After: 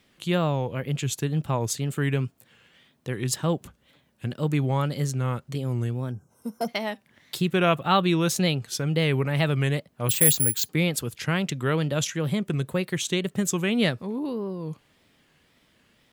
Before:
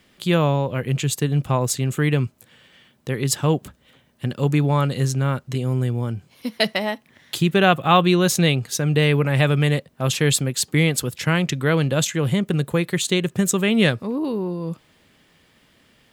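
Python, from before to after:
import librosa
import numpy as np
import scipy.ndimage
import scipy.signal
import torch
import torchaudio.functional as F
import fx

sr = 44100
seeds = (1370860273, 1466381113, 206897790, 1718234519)

y = fx.wow_flutter(x, sr, seeds[0], rate_hz=2.1, depth_cents=140.0)
y = fx.spec_box(y, sr, start_s=6.11, length_s=0.57, low_hz=1600.0, high_hz=5200.0, gain_db=-22)
y = fx.resample_bad(y, sr, factor=4, down='filtered', up='zero_stuff', at=(10.09, 10.69))
y = y * 10.0 ** (-5.5 / 20.0)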